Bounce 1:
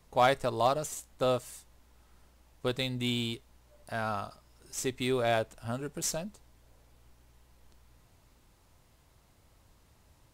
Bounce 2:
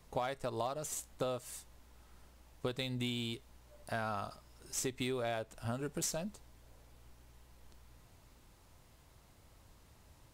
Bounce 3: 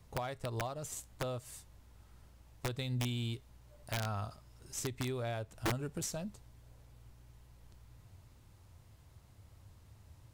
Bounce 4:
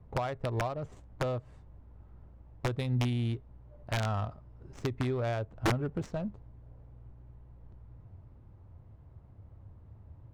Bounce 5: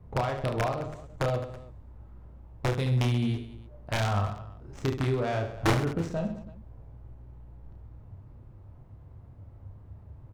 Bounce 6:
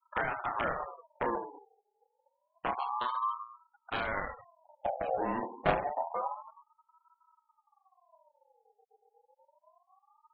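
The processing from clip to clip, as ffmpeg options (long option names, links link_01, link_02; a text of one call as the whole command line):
ffmpeg -i in.wav -af "acompressor=threshold=-34dB:ratio=16,volume=1dB" out.wav
ffmpeg -i in.wav -filter_complex "[0:a]equalizer=frequency=98:width_type=o:width=1.1:gain=13,acrossover=split=3100[link_01][link_02];[link_01]aeval=exprs='(mod(16.8*val(0)+1,2)-1)/16.8':channel_layout=same[link_03];[link_03][link_02]amix=inputs=2:normalize=0,volume=-3dB" out.wav
ffmpeg -i in.wav -af "adynamicsmooth=sensitivity=6:basefreq=960,volume=6.5dB" out.wav
ffmpeg -i in.wav -af "aecho=1:1:30|72|130.8|213.1|328.4:0.631|0.398|0.251|0.158|0.1,volume=2.5dB" out.wav
ffmpeg -i in.wav -af "afftfilt=real='re*gte(hypot(re,im),0.0282)':imag='im*gte(hypot(re,im),0.0282)':win_size=1024:overlap=0.75,highpass=frequency=160:width_type=q:width=0.5412,highpass=frequency=160:width_type=q:width=1.307,lowpass=frequency=3200:width_type=q:width=0.5176,lowpass=frequency=3200:width_type=q:width=0.7071,lowpass=frequency=3200:width_type=q:width=1.932,afreqshift=-290,aeval=exprs='val(0)*sin(2*PI*880*n/s+880*0.3/0.28*sin(2*PI*0.28*n/s))':channel_layout=same" out.wav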